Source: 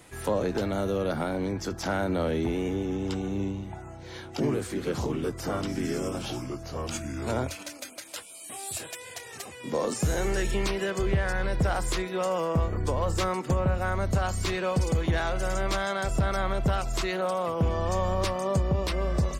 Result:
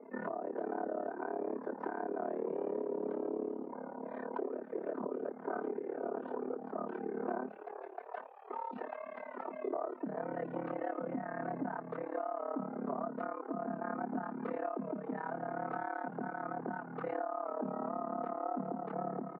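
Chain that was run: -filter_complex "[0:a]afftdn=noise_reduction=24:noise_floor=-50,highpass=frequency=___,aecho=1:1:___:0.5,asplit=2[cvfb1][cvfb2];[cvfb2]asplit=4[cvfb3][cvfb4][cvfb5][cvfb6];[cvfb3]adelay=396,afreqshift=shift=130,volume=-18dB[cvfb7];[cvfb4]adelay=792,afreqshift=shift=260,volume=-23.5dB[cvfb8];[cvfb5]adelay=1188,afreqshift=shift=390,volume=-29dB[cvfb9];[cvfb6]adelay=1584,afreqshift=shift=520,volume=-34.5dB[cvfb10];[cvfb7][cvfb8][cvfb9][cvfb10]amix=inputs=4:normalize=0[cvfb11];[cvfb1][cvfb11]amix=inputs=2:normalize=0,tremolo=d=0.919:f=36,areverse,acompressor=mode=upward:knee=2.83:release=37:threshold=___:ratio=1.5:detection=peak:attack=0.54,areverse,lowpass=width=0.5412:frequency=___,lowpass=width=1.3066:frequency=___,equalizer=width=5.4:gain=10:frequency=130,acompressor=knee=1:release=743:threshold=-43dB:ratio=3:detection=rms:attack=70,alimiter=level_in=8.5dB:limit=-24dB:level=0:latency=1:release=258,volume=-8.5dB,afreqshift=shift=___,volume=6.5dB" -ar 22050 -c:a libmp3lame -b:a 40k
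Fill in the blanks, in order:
100, 3.6, -48dB, 1.3k, 1.3k, 130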